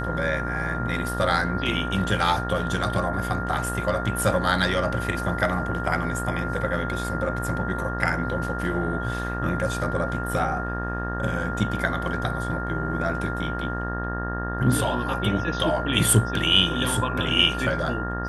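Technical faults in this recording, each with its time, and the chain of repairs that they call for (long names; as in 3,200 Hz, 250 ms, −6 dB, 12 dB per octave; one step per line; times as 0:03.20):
mains buzz 60 Hz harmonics 31 −30 dBFS
whistle 1,400 Hz −31 dBFS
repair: notch filter 1,400 Hz, Q 30
hum removal 60 Hz, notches 31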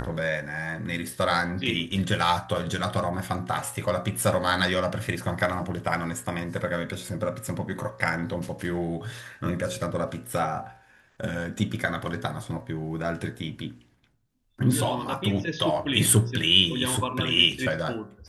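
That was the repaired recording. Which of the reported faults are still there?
none of them is left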